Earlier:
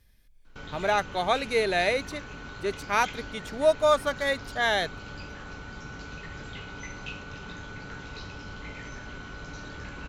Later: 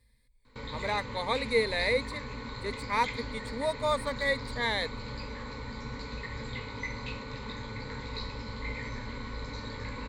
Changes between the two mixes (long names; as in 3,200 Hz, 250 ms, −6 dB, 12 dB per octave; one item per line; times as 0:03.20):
speech −6.5 dB
master: add EQ curve with evenly spaced ripples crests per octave 0.97, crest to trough 15 dB